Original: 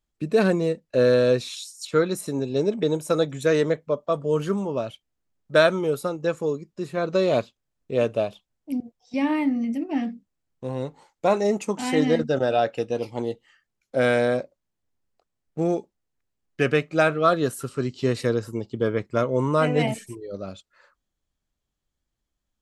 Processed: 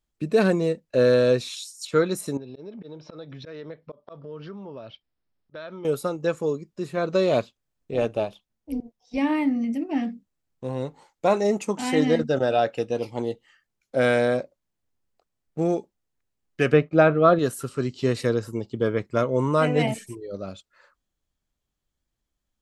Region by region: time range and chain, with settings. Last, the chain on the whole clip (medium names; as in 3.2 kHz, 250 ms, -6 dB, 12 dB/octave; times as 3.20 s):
2.37–5.85 s: Chebyshev low-pass 5.4 kHz, order 6 + slow attack 252 ms + compression 4:1, threshold -37 dBFS
7.92–9.18 s: AM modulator 220 Hz, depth 30% + band-stop 7.6 kHz, Q 13
16.73–17.39 s: low-pass 4.2 kHz + expander -41 dBFS + tilt shelf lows +5.5 dB, about 1.3 kHz
whole clip: none